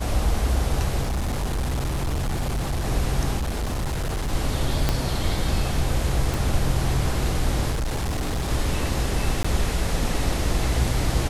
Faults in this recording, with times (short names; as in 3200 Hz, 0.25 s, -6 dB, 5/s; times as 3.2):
1.02–2.85 clipped -21.5 dBFS
3.37–4.33 clipped -22.5 dBFS
4.89 pop -7 dBFS
6.34 pop
7.7–8.51 clipped -22 dBFS
9.43–9.45 gap 15 ms